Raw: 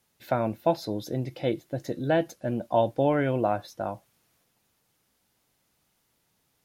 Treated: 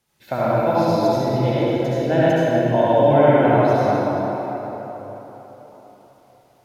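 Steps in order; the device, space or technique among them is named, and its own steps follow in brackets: cathedral (reverberation RT60 4.2 s, pre-delay 60 ms, DRR -10 dB); treble shelf 9.6 kHz -5.5 dB

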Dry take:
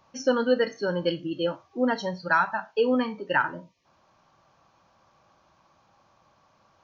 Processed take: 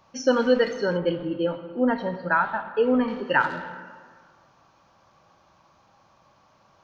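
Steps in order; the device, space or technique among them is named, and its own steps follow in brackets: saturated reverb return (on a send at -8 dB: reverberation RT60 1.7 s, pre-delay 31 ms + saturation -23 dBFS, distortion -10 dB); 0.97–3.08 s: on the sum: distance through air 410 m; trim +2.5 dB

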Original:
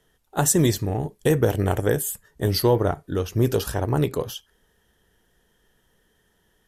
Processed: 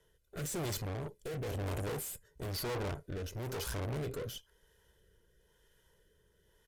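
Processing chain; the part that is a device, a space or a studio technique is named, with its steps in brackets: comb 2 ms, depth 65%; overdriven rotary cabinet (valve stage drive 35 dB, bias 0.7; rotary cabinet horn 1 Hz)

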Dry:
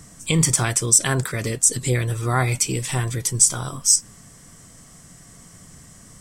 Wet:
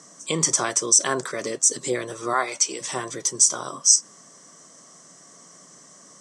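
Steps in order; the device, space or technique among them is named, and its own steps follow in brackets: 2.33–2.81 s: frequency weighting A; television speaker (cabinet simulation 200–8500 Hz, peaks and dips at 220 Hz -4 dB, 380 Hz +4 dB, 590 Hz +7 dB, 1.1 kHz +7 dB, 2.5 kHz -5 dB, 6 kHz +9 dB); trim -3 dB

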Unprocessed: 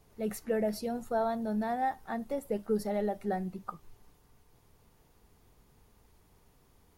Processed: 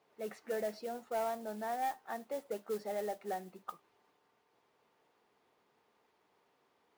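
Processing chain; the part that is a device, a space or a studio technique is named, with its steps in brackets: carbon microphone (band-pass 410–3500 Hz; saturation -25.5 dBFS, distortion -19 dB; modulation noise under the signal 18 dB); trim -2.5 dB

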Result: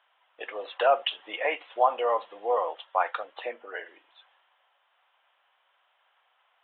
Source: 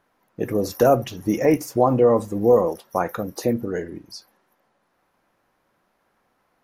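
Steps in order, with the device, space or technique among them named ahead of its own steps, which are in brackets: 3.40–3.84 s: low-pass 2.9 kHz 24 dB/octave; musical greeting card (resampled via 8 kHz; high-pass 690 Hz 24 dB/octave; peaking EQ 3.1 kHz +12 dB 0.52 oct)

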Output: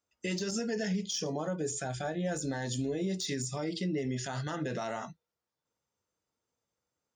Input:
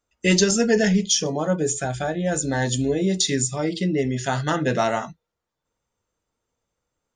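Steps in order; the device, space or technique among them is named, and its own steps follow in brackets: broadcast voice chain (high-pass 85 Hz; de-esser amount 45%; compression 4:1, threshold -21 dBFS, peak gain reduction 7 dB; peaking EQ 5.1 kHz +5 dB 0.41 oct; peak limiter -17.5 dBFS, peak gain reduction 7 dB); trim -7 dB

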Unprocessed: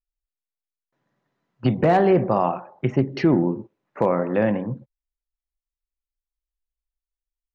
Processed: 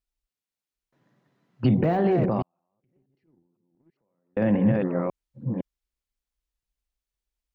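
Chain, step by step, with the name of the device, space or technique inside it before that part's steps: chunks repeated in reverse 510 ms, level -7.5 dB; broadcast voice chain (high-pass 89 Hz 6 dB/octave; de-esser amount 100%; compression 5:1, threshold -19 dBFS, peak gain reduction 6.5 dB; peaking EQ 3.7 kHz +4.5 dB 2.8 oct; peak limiter -20.5 dBFS, peak gain reduction 10.5 dB); 2.42–4.37 s: gate -21 dBFS, range -51 dB; bass shelf 410 Hz +11.5 dB

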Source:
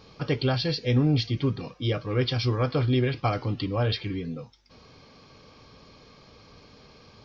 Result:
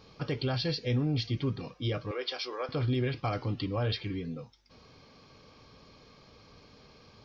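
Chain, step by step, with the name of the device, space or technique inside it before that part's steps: clipper into limiter (hard clipper -13.5 dBFS, distortion -45 dB; peak limiter -17.5 dBFS, peak gain reduction 4 dB); 2.11–2.69 s: high-pass 410 Hz 24 dB/octave; trim -4 dB

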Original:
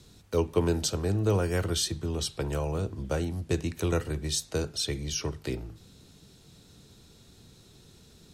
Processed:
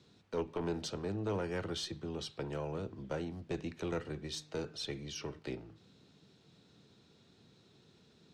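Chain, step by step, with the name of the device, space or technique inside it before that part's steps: valve radio (band-pass 140–4100 Hz; valve stage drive 21 dB, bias 0.35; transformer saturation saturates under 200 Hz); 4.25–5.39 s: de-hum 152.1 Hz, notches 18; trim -5 dB

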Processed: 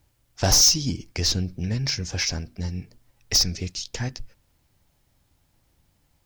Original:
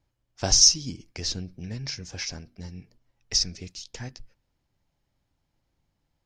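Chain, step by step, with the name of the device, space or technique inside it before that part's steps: open-reel tape (saturation -21 dBFS, distortion -6 dB; peaking EQ 76 Hz +4 dB 0.92 oct; white noise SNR 47 dB); trim +8 dB

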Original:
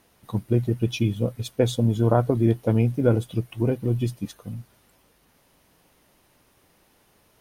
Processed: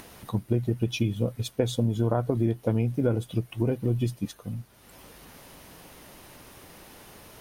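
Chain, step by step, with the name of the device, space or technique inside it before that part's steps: upward and downward compression (upward compressor, threshold -36 dBFS; compression 4:1, threshold -21 dBFS, peak gain reduction 7 dB)

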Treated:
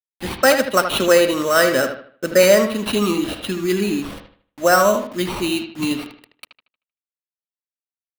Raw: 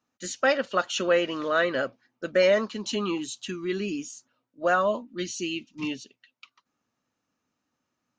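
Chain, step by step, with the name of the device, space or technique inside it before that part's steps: 1.80–3.52 s: de-hum 332.3 Hz, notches 32; bass shelf 200 Hz +4 dB; early 8-bit sampler (sample-rate reducer 6.8 kHz, jitter 0%; bit crusher 8-bit); bucket-brigade echo 77 ms, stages 2048, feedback 34%, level -8 dB; trim +8 dB

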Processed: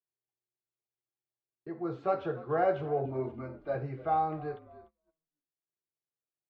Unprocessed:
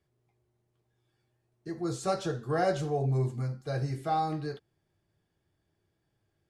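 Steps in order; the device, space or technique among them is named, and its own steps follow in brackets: 3.05–3.75 s: comb 3.3 ms, depth 81%; high-pass 160 Hz 12 dB/octave; bass cabinet (cabinet simulation 82–2400 Hz, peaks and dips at 100 Hz -7 dB, 190 Hz -8 dB, 300 Hz -5 dB, 1.8 kHz -7 dB); frequency-shifting echo 294 ms, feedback 39%, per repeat -49 Hz, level -19 dB; gate -57 dBFS, range -25 dB; trim +1 dB

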